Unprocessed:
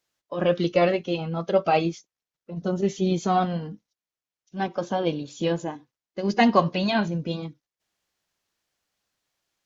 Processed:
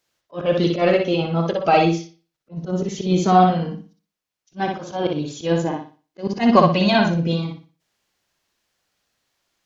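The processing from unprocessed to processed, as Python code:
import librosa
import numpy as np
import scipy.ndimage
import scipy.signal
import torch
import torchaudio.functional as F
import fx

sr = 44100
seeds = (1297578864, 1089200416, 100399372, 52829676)

p1 = 10.0 ** (-14.5 / 20.0) * np.tanh(x / 10.0 ** (-14.5 / 20.0))
p2 = x + (p1 * 10.0 ** (-9.5 / 20.0))
p3 = fx.auto_swell(p2, sr, attack_ms=110.0)
p4 = fx.echo_bbd(p3, sr, ms=60, stages=2048, feedback_pct=31, wet_db=-3.5)
y = p4 * 10.0 ** (3.0 / 20.0)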